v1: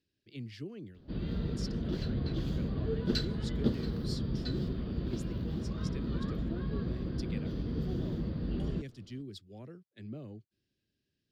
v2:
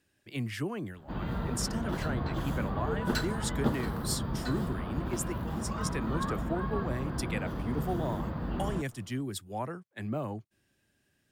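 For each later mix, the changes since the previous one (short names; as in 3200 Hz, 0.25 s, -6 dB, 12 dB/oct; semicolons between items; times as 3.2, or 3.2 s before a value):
speech +8.0 dB; master: remove EQ curve 440 Hz 0 dB, 890 Hz -18 dB, 4600 Hz +4 dB, 8500 Hz -15 dB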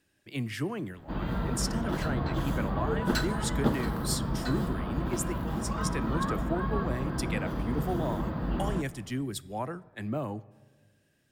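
reverb: on, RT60 1.6 s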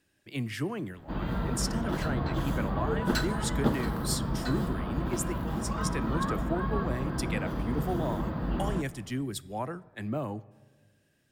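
none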